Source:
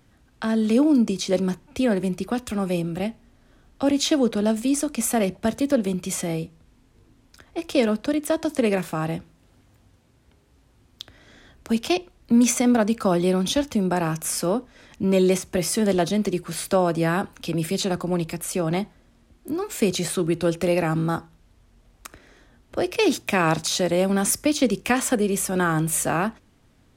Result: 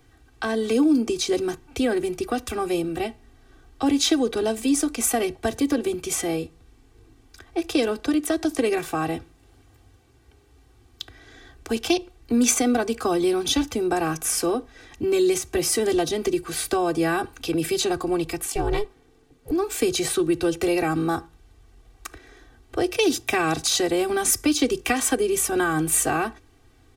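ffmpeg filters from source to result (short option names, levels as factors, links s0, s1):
-filter_complex "[0:a]asettb=1/sr,asplit=3[s0][s1][s2];[s0]atrim=end=18.454[s3];[s1]atrim=start=18.45:end=19.51,asetpts=PTS-STARTPTS,afade=t=in:d=0.004:c=qsin,afade=t=out:st=1.056:d=0.004:c=qsin,aeval=exprs='val(0)*sin(2*PI*210*n/s)':c=same[s4];[s2]atrim=start=19.506[s5];[s3][s4]acrossfade=d=0.004:c1=hsin:c2=qsin[s6];[s6][s5]acrossfade=d=0.004:c1=qsin:c2=hsin,aecho=1:1:2.6:0.94,acrossover=split=260|3000[s7][s8][s9];[s8]acompressor=threshold=0.0891:ratio=6[s10];[s7][s10][s9]amix=inputs=3:normalize=0"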